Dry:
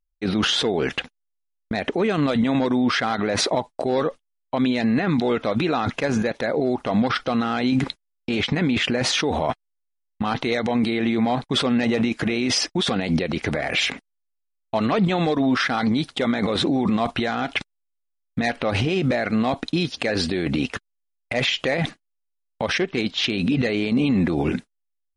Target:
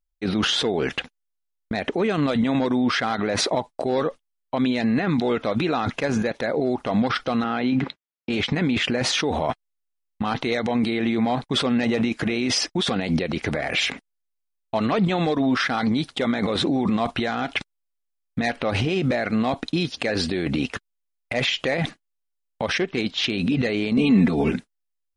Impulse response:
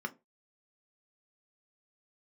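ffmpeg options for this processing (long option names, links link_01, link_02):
-filter_complex "[0:a]asettb=1/sr,asplit=3[link_01][link_02][link_03];[link_01]atrim=end=7.444[link_04];[link_02]atrim=start=7.44:end=8.3,asetpts=PTS-STARTPTS,afade=type=in:duration=0.004:curve=qsin,afade=type=out:start_time=0.856:duration=0.004:curve=qsin,highpass=110,lowpass=3200[link_05];[link_03]atrim=start=8.296[link_06];[link_04][link_05]acrossfade=duration=0.004:curve1=hsin:curve2=qsin[link_07];[link_07][link_06]acrossfade=duration=0.004:curve1=qsin:curve2=hsin,asettb=1/sr,asplit=3[link_08][link_09][link_10];[link_08]atrim=end=23.974[link_11];[link_09]atrim=start=23.97:end=24.51,asetpts=PTS-STARTPTS,afade=type=in:duration=0.004:curve=qsin,afade=type=out:start_time=0.536:duration=0.004:curve=qsin,aecho=1:1:4.5:0.97,atrim=end_sample=23814[link_12];[link_10]atrim=start=24.506[link_13];[link_11][link_12]acrossfade=duration=0.004:curve1=hsin:curve2=qsin[link_14];[link_14][link_13]acrossfade=duration=0.004:curve1=qsin:curve2=hsin,volume=-1dB"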